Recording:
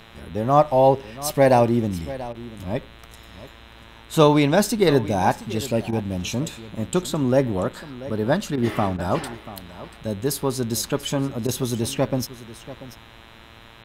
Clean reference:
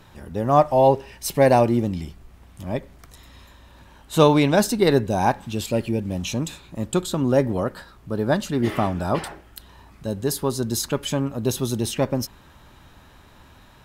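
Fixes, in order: de-hum 113.4 Hz, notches 36; interpolate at 2.33/5.91/8.56/8.97/11.47, 14 ms; inverse comb 0.687 s -16 dB

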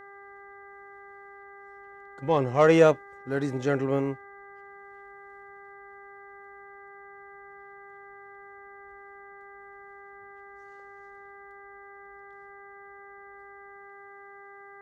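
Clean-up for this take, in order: de-hum 399.1 Hz, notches 5

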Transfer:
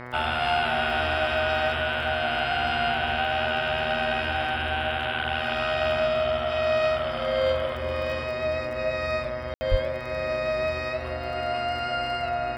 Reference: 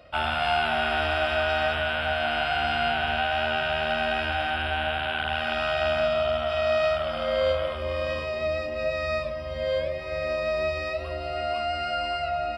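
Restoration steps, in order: de-click; de-hum 123.4 Hz, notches 18; 9.7–9.82 HPF 140 Hz 24 dB/oct; room tone fill 9.54–9.61

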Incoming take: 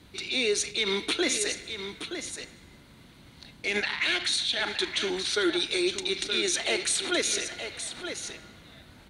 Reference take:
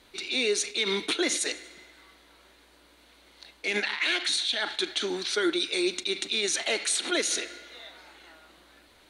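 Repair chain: noise print and reduce 6 dB; inverse comb 0.922 s -9 dB

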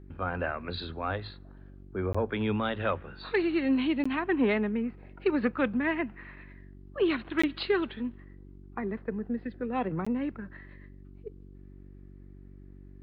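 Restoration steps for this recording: clip repair -15.5 dBFS; de-hum 47.7 Hz, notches 8; interpolate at 2.13/4.04/7.42/10.05, 15 ms

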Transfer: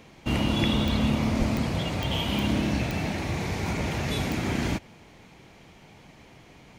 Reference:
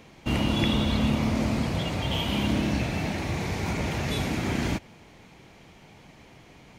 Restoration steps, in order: de-click; 1.38–1.5 HPF 140 Hz 24 dB/oct

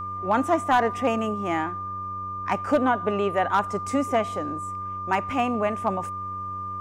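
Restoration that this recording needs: clip repair -12.5 dBFS; de-hum 95.6 Hz, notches 6; notch 1200 Hz, Q 30

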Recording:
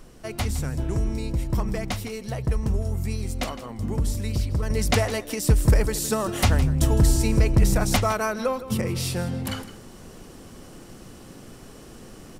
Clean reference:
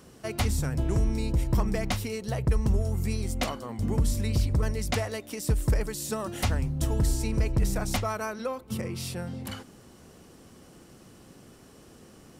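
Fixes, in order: expander -36 dBFS, range -21 dB; inverse comb 0.161 s -14.5 dB; gain correction -7 dB, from 4.7

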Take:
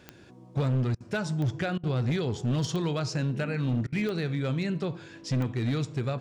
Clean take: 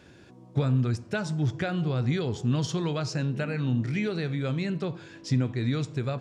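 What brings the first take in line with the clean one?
clip repair -22.5 dBFS; de-click; interpolate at 0.95/1.78/3.87, 53 ms

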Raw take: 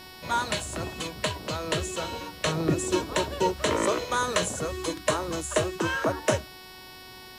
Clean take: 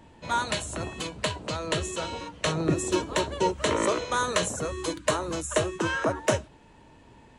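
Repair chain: de-hum 371.6 Hz, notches 15; noise print and reduce 8 dB

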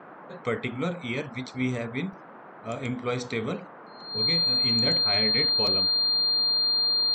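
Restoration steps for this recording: notch 4200 Hz, Q 30; interpolate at 2.13/5.67, 2.8 ms; noise print and reduce 27 dB

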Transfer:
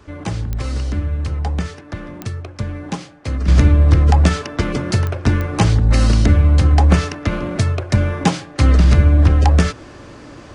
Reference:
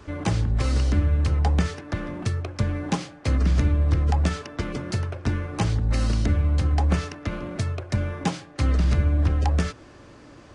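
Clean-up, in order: de-click; gain 0 dB, from 3.48 s -9.5 dB

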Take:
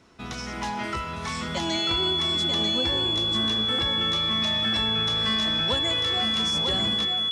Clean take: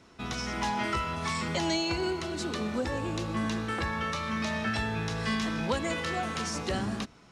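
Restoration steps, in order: notch 3400 Hz, Q 30; inverse comb 0.942 s -5 dB

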